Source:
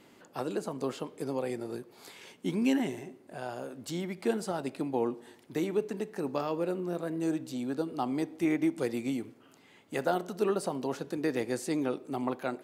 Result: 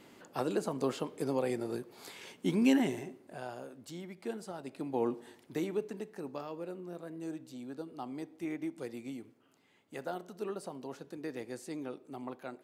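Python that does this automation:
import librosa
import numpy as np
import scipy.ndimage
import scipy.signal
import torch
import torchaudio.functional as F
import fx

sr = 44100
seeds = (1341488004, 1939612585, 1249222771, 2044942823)

y = fx.gain(x, sr, db=fx.line((3.01, 1.0), (3.95, -9.5), (4.62, -9.5), (5.12, 0.0), (6.5, -10.0)))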